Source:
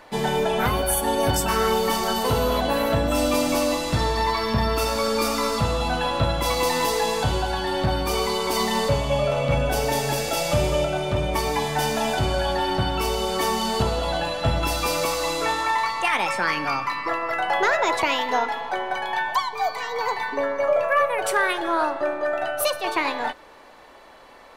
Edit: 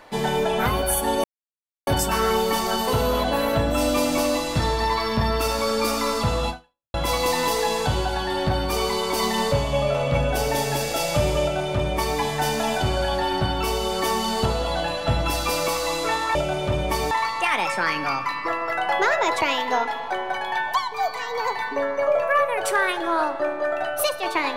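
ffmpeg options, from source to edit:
-filter_complex "[0:a]asplit=5[a][b][c][d][e];[a]atrim=end=1.24,asetpts=PTS-STARTPTS,afade=t=out:st=1.236:d=0.004:c=hsin,apad=pad_dur=0.63[f];[b]atrim=start=1.24:end=6.31,asetpts=PTS-STARTPTS,afade=t=in:d=0.004:c=hsin,afade=t=out:st=4.62:d=0.45:c=exp[g];[c]atrim=start=6.31:end=15.722,asetpts=PTS-STARTPTS,afade=t=in:d=0.004:c=hsin[h];[d]atrim=start=10.788:end=11.552[i];[e]atrim=start=15.718[j];[f][g][h]concat=n=3:v=0:a=1[k];[k][i]acrossfade=d=0.004:c1=hsin:c2=hsin[l];[l][j]acrossfade=d=0.004:c1=hsin:c2=hsin"

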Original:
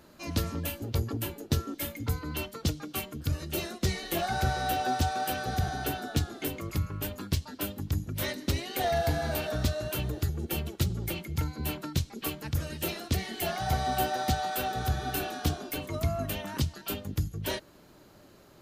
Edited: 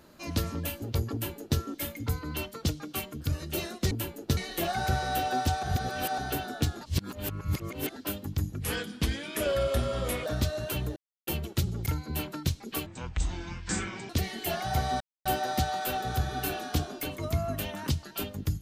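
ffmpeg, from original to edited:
-filter_complex "[0:a]asplit=15[a][b][c][d][e][f][g][h][i][j][k][l][m][n][o];[a]atrim=end=3.912[p];[b]atrim=start=1.128:end=1.592[q];[c]atrim=start=3.908:end=5.172[r];[d]atrim=start=5.168:end=5.722,asetpts=PTS-STARTPTS,areverse[s];[e]atrim=start=5.718:end=6.352[t];[f]atrim=start=6.348:end=7.502,asetpts=PTS-STARTPTS,areverse[u];[g]atrim=start=7.498:end=8.164[v];[h]atrim=start=8.16:end=9.49,asetpts=PTS-STARTPTS,asetrate=35721,aresample=44100,atrim=end_sample=72411,asetpts=PTS-STARTPTS[w];[i]atrim=start=9.486:end=10.19,asetpts=PTS-STARTPTS,afade=t=out:st=0.7:d=0.004:c=hsin[x];[j]atrim=start=10.19:end=10.5,asetpts=PTS-STARTPTS,volume=0[y];[k]atrim=start=10.5:end=11.092,asetpts=PTS-STARTPTS,afade=t=in:d=0.004:c=hsin[z];[l]atrim=start=11.358:end=12.364[aa];[m]atrim=start=12.36:end=13.05,asetpts=PTS-STARTPTS,asetrate=24696,aresample=44100,atrim=end_sample=54337,asetpts=PTS-STARTPTS[ab];[n]atrim=start=13.046:end=13.96,asetpts=PTS-STARTPTS,afade=t=out:st=0.91:d=0.004:c=hsin,apad=pad_dur=0.25[ac];[o]atrim=start=13.96,asetpts=PTS-STARTPTS,afade=t=in:d=0.004:c=hsin[ad];[p][q]acrossfade=d=0.004:c1=hsin:c2=hsin[ae];[ae][r]acrossfade=d=0.004:c1=hsin:c2=hsin[af];[af][s]acrossfade=d=0.004:c1=hsin:c2=hsin[ag];[ag][t]acrossfade=d=0.004:c1=hsin:c2=hsin[ah];[ah][u]acrossfade=d=0.004:c1=hsin:c2=hsin[ai];[ai][v]acrossfade=d=0.004:c1=hsin:c2=hsin[aj];[aj][w]acrossfade=d=0.004:c1=hsin:c2=hsin[ak];[x][y][z]concat=n=3:v=0:a=1[al];[ak][al]acrossfade=d=0.004:c1=hsin:c2=hsin[am];[am][aa]acrossfade=d=0.004:c1=hsin:c2=hsin[an];[an][ab]acrossfade=d=0.004:c1=hsin:c2=hsin[ao];[ac][ad]concat=n=2:v=0:a=1[ap];[ao][ap]acrossfade=d=0.004:c1=hsin:c2=hsin"

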